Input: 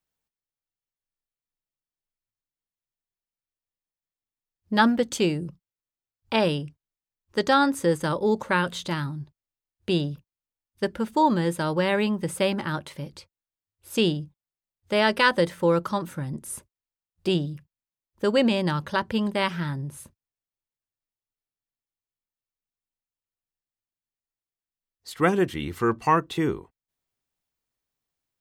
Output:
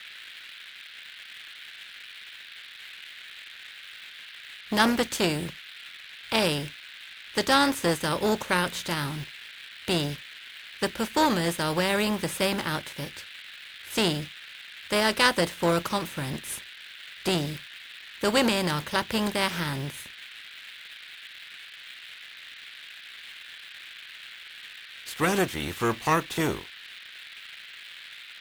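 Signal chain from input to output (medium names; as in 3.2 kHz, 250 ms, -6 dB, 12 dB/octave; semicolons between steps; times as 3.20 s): spectral contrast reduction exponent 0.6; band noise 1.5–3.9 kHz -43 dBFS; in parallel at -9.5 dB: word length cut 6-bit, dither none; on the sum: transformer saturation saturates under 1.4 kHz; trim -2.5 dB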